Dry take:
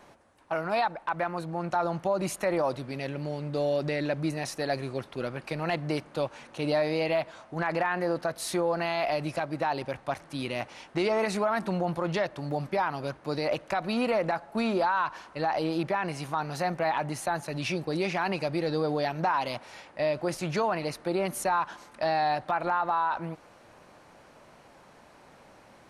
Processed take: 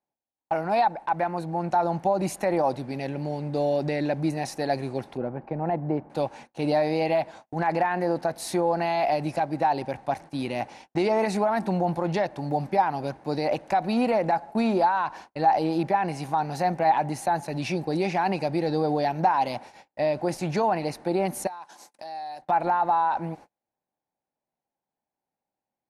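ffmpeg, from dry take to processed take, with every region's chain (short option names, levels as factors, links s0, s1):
-filter_complex "[0:a]asettb=1/sr,asplit=3[s0][s1][s2];[s0]atrim=end=5.174[s3];[s1]atrim=start=5.17:end=6.1,asetpts=PTS-STARTPTS,afade=t=in:d=0.004:c=qsin,afade=t=out:st=0.926:d=0.004:c=qsin,lowpass=1100,agate=range=0.0224:threshold=0.00316:ratio=3:release=100:detection=peak[s4];[s2]atrim=start=6.096[s5];[s3][s4]acrossfade=d=0.004:c1=hsin:c2=qsin[s6];[s6][s5]acrossfade=d=0.004:c1=qsin:c2=hsin,asettb=1/sr,asplit=3[s7][s8][s9];[s7]atrim=end=21.474[s10];[s8]atrim=start=21.47:end=22.42,asetpts=PTS-STARTPTS,afade=t=in:d=0.004:c=qsin,afade=t=out:st=0.946:d=0.004:c=qsin,bass=f=250:g=-10,treble=f=4000:g=15,acompressor=threshold=0.01:ratio=8:attack=3.2:release=140:knee=1:detection=peak,highpass=81[s11];[s9]atrim=start=22.416[s12];[s10][s11]acrossfade=d=0.004:c1=hsin:c2=qsin[s13];[s13][s12]acrossfade=d=0.004:c1=qsin:c2=hsin,equalizer=f=240:w=0.86:g=5,agate=range=0.0112:threshold=0.00631:ratio=16:detection=peak,equalizer=f=800:t=o:w=0.33:g=10,equalizer=f=1250:t=o:w=0.33:g=-7,equalizer=f=3150:t=o:w=0.33:g=-4"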